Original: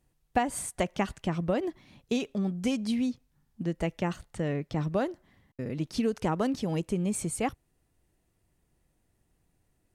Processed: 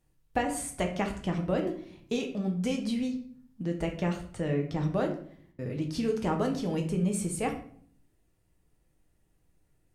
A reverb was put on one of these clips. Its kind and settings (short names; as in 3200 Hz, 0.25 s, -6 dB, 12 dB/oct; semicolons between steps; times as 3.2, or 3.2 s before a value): shoebox room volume 72 m³, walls mixed, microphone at 0.56 m; gain -2.5 dB